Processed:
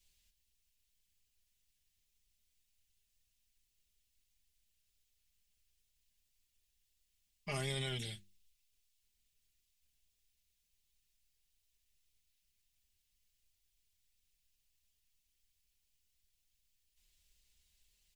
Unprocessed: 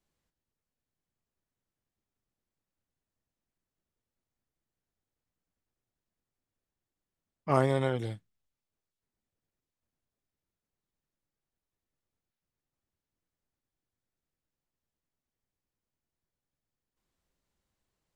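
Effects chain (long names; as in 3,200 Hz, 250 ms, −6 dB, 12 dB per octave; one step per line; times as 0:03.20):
drawn EQ curve 100 Hz 0 dB, 170 Hz −17 dB, 1,200 Hz −20 dB, 2,700 Hz +2 dB
brickwall limiter −39.5 dBFS, peak gain reduction 11 dB
mains-hum notches 50/100/150/200/250/300/350 Hz
comb filter 4.9 ms, depth 83%
level +8.5 dB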